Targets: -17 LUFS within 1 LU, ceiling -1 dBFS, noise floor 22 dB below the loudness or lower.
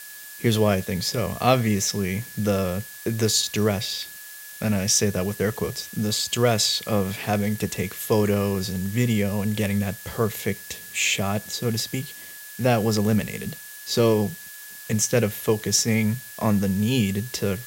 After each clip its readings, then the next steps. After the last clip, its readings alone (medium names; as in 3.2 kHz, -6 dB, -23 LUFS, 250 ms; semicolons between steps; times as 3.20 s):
steady tone 1.7 kHz; tone level -44 dBFS; noise floor -41 dBFS; noise floor target -46 dBFS; loudness -23.5 LUFS; peak level -3.5 dBFS; loudness target -17.0 LUFS
-> band-stop 1.7 kHz, Q 30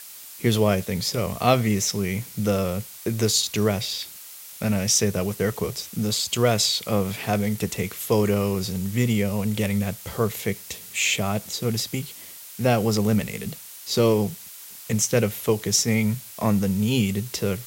steady tone not found; noise floor -42 dBFS; noise floor target -46 dBFS
-> noise reduction 6 dB, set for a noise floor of -42 dBFS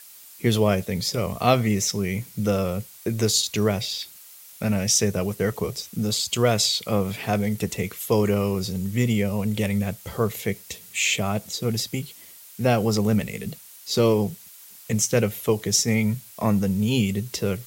noise floor -46 dBFS; loudness -24.0 LUFS; peak level -3.5 dBFS; loudness target -17.0 LUFS
-> trim +7 dB; peak limiter -1 dBFS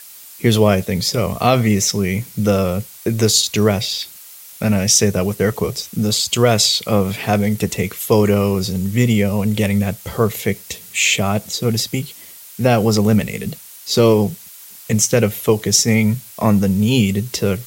loudness -17.0 LUFS; peak level -1.0 dBFS; noise floor -39 dBFS